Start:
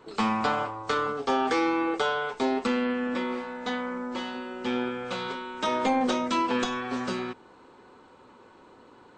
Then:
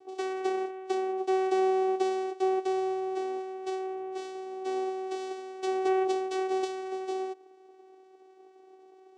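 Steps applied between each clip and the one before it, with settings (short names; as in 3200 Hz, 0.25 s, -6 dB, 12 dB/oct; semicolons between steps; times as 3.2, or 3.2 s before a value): band shelf 1300 Hz -13.5 dB 1.2 oct; vocoder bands 4, saw 378 Hz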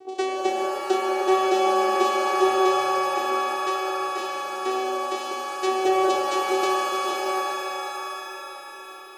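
shimmer reverb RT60 3.9 s, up +7 st, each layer -2 dB, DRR 4.5 dB; gain +8.5 dB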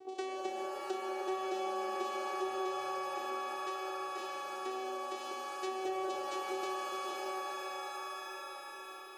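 compressor 2:1, threshold -34 dBFS, peak gain reduction 10.5 dB; gain -7 dB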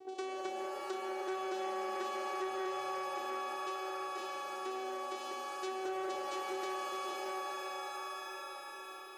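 core saturation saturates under 920 Hz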